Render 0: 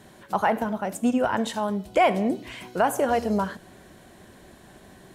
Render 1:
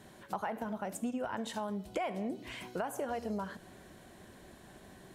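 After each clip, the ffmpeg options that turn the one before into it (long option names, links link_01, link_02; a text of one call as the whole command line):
ffmpeg -i in.wav -af "acompressor=threshold=-29dB:ratio=5,volume=-5dB" out.wav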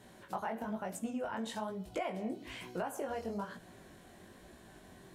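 ffmpeg -i in.wav -af "flanger=delay=16.5:depth=6.5:speed=1.1,volume=1.5dB" out.wav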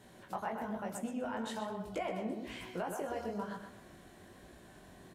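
ffmpeg -i in.wav -filter_complex "[0:a]asplit=2[link_01][link_02];[link_02]adelay=125,lowpass=frequency=3400:poles=1,volume=-5dB,asplit=2[link_03][link_04];[link_04]adelay=125,lowpass=frequency=3400:poles=1,volume=0.34,asplit=2[link_05][link_06];[link_06]adelay=125,lowpass=frequency=3400:poles=1,volume=0.34,asplit=2[link_07][link_08];[link_08]adelay=125,lowpass=frequency=3400:poles=1,volume=0.34[link_09];[link_01][link_03][link_05][link_07][link_09]amix=inputs=5:normalize=0,volume=-1dB" out.wav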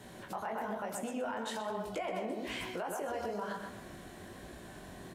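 ffmpeg -i in.wav -filter_complex "[0:a]acrossover=split=320[link_01][link_02];[link_01]acompressor=threshold=-52dB:ratio=6[link_03];[link_03][link_02]amix=inputs=2:normalize=0,alimiter=level_in=11.5dB:limit=-24dB:level=0:latency=1:release=71,volume=-11.5dB,volume=7dB" out.wav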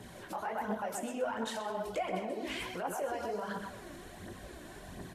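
ffmpeg -i in.wav -af "aphaser=in_gain=1:out_gain=1:delay=3.6:decay=0.48:speed=1.4:type=triangular" -ar 32000 -c:a libvorbis -b:a 64k out.ogg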